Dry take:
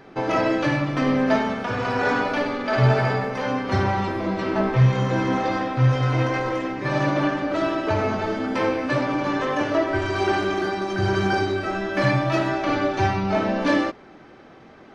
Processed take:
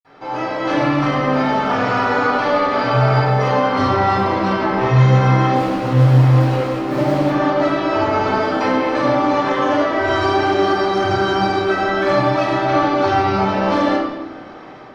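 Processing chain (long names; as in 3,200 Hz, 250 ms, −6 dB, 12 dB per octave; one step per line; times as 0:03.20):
0:05.48–0:07.25: running median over 41 samples
bass and treble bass −11 dB, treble −1 dB
brickwall limiter −20.5 dBFS, peak gain reduction 11 dB
automatic gain control gain up to 7 dB
convolution reverb RT60 1.1 s, pre-delay 47 ms, DRR −60 dB
level −4.5 dB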